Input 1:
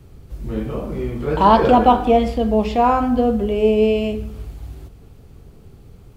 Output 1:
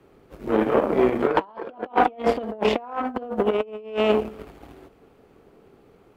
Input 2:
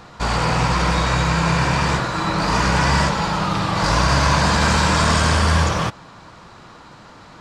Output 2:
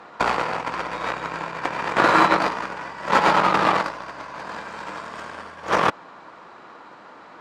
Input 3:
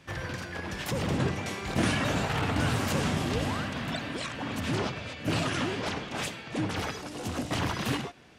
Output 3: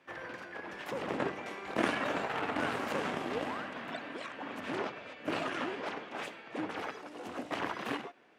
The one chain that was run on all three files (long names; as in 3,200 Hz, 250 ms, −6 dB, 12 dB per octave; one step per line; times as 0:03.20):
compressor whose output falls as the input rises −22 dBFS, ratio −0.5
harmonic generator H 7 −20 dB, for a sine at −6 dBFS
three-way crossover with the lows and the highs turned down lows −23 dB, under 250 Hz, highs −13 dB, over 2,700 Hz
level +5.5 dB